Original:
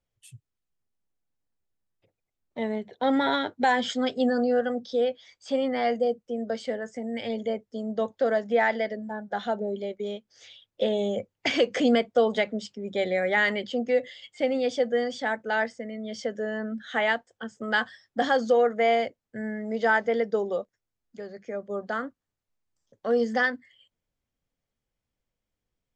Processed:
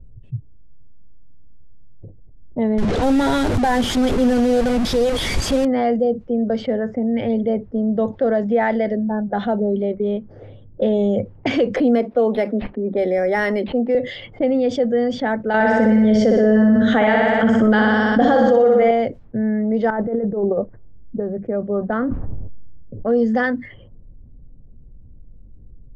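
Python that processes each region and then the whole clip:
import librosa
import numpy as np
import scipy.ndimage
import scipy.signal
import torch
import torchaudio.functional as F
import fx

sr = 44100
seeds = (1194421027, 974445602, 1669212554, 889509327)

y = fx.chain(x, sr, fx.delta_mod(bps=64000, step_db=-24.0),
    fx.high_shelf(hz=2700.0, db=6.0),
    fx.clip_hard(threshold_db=-15.0), at=(2.78, 5.65))
y = fx.chain(y, sr, fx.highpass(hz=230.0, slope=24),
    fx.resample_linear(factor=6), at=(11.76, 13.95))
y = fx.chain(y, sr, fx.room_flutter(wall_m=10.4, rt60_s=0.95),
    fx.env_flatten(amount_pct=70), at=(15.54, 18.91))
y = fx.chain(y, sr, fx.lowpass(hz=1100.0, slope=12),
    fx.over_compress(threshold_db=-29.0, ratio=-0.5), at=(19.9, 21.2))
y = fx.chain(y, sr, fx.env_lowpass(base_hz=930.0, full_db=-27.0),
    fx.high_shelf(hz=3000.0, db=-6.0),
    fx.sustainer(db_per_s=55.0), at=(21.88, 23.06))
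y = fx.env_lowpass(y, sr, base_hz=350.0, full_db=-23.5)
y = fx.tilt_eq(y, sr, slope=-4.0)
y = fx.env_flatten(y, sr, amount_pct=50)
y = y * 10.0 ** (-2.0 / 20.0)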